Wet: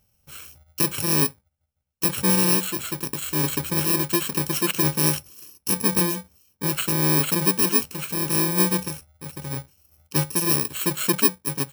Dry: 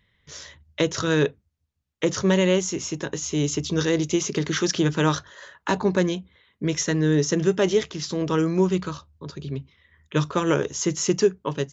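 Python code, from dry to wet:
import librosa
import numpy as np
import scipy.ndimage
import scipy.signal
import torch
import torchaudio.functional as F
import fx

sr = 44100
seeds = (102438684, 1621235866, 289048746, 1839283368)

y = fx.bit_reversed(x, sr, seeds[0], block=64)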